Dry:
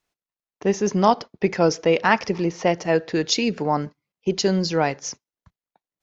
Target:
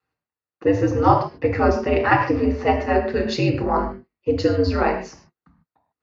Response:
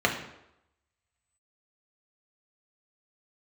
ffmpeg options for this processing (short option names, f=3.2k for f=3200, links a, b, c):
-filter_complex "[0:a]aeval=exprs='val(0)*sin(2*PI*95*n/s)':c=same[a];[1:a]atrim=start_sample=2205,afade=t=out:st=0.15:d=0.01,atrim=end_sample=7056,asetrate=28665,aresample=44100[b];[a][b]afir=irnorm=-1:irlink=0,volume=-12dB"